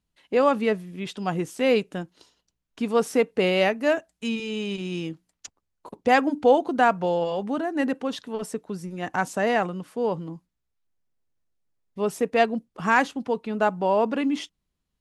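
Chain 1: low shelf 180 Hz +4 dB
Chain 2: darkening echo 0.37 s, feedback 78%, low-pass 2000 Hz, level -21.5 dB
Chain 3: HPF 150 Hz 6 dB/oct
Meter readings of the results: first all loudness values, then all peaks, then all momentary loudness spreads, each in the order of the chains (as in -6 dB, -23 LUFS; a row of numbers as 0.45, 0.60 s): -24.0, -25.0, -25.0 LUFS; -6.0, -7.0, -6.5 dBFS; 12, 15, 13 LU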